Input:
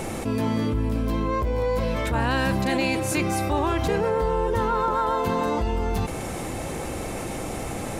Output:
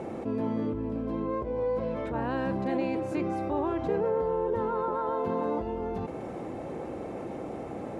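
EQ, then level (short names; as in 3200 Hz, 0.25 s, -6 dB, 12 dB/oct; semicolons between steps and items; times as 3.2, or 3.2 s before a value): band-pass 400 Hz, Q 0.72; -3.0 dB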